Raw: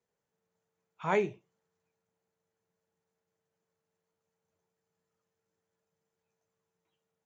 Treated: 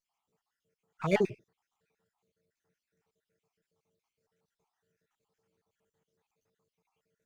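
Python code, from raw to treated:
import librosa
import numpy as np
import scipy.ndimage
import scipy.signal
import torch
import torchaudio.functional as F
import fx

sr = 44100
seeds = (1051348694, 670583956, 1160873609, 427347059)

y = fx.spec_dropout(x, sr, seeds[0], share_pct=56)
y = fx.peak_eq(y, sr, hz=560.0, db=-3.0, octaves=0.28)
y = fx.running_max(y, sr, window=3)
y = y * librosa.db_to_amplitude(6.5)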